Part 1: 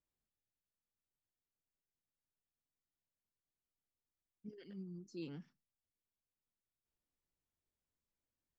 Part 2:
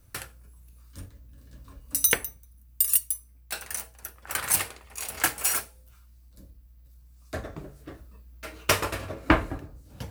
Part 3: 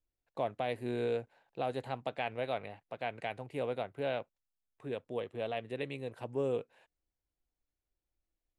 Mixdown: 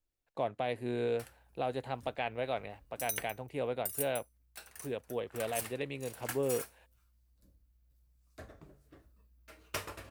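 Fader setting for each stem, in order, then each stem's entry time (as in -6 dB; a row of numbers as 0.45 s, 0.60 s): mute, -15.5 dB, +0.5 dB; mute, 1.05 s, 0.00 s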